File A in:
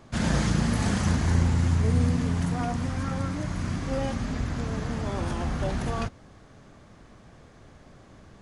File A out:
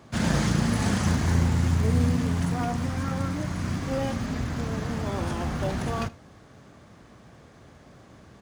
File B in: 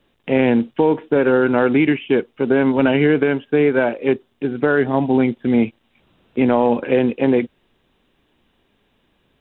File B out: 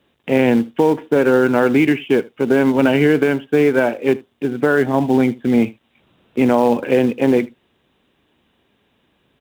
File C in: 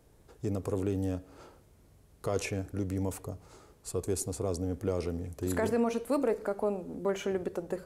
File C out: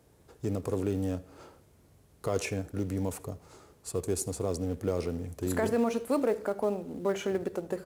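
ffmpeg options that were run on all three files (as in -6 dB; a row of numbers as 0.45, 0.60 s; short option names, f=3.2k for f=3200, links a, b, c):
-filter_complex "[0:a]highpass=65,asplit=2[a][b];[b]acrusher=bits=3:mode=log:mix=0:aa=0.000001,volume=-11dB[c];[a][c]amix=inputs=2:normalize=0,aecho=1:1:78:0.0794,volume=-1dB"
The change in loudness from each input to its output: +0.5, +1.0, +1.0 LU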